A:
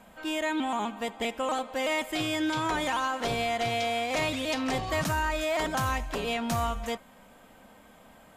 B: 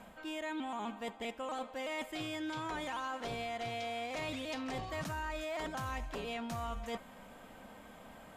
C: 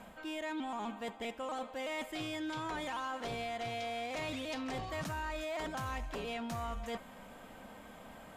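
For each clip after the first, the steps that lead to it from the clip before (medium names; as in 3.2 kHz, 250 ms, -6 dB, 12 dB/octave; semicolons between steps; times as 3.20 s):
treble shelf 5.6 kHz -4.5 dB; reverse; compression 4:1, threshold -40 dBFS, peak gain reduction 12.5 dB; reverse; trim +1 dB
saturation -32 dBFS, distortion -22 dB; trim +1.5 dB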